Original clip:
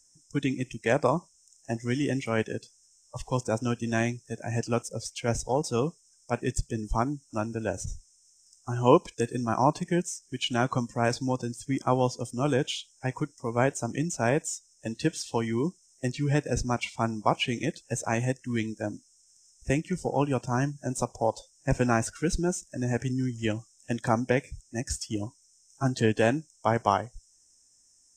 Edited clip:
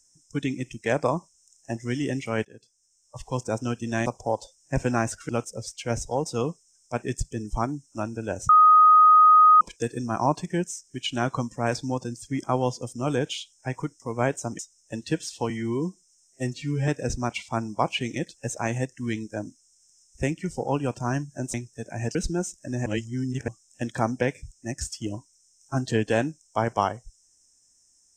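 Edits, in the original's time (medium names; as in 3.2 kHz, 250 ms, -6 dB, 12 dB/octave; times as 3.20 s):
2.45–3.43 s: fade in, from -19.5 dB
4.06–4.67 s: swap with 21.01–22.24 s
7.87–8.99 s: bleep 1.25 kHz -11 dBFS
13.97–14.52 s: delete
15.43–16.35 s: stretch 1.5×
22.95–23.57 s: reverse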